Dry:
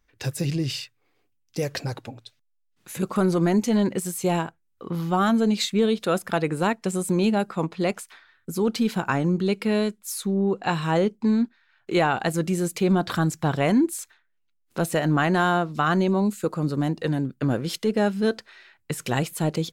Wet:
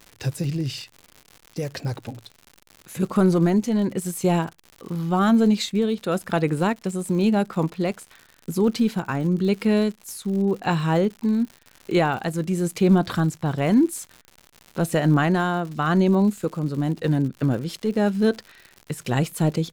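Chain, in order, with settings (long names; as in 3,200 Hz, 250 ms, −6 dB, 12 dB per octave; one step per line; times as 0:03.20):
amplitude tremolo 0.93 Hz, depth 42%
surface crackle 130 per second −33 dBFS
low-shelf EQ 320 Hz +6 dB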